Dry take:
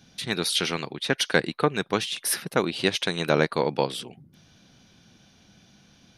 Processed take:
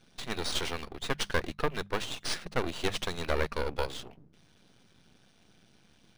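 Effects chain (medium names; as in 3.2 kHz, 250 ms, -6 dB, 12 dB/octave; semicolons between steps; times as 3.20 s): half-wave rectifier; hum notches 50/100/150/200 Hz; decimation joined by straight lines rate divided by 3×; trim -1.5 dB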